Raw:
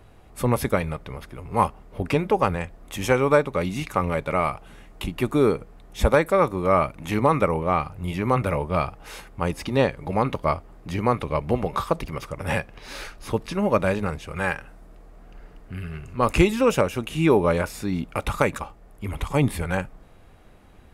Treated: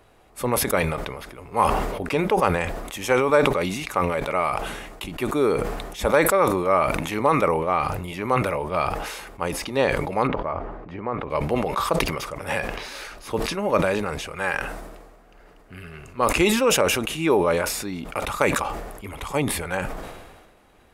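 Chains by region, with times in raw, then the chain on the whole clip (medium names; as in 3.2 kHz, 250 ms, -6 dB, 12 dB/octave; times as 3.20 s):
10.27–11.30 s: low-pass 1.6 kHz + compression 2:1, threshold -25 dBFS
whole clip: tone controls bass -10 dB, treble +1 dB; decay stretcher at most 40 dB/s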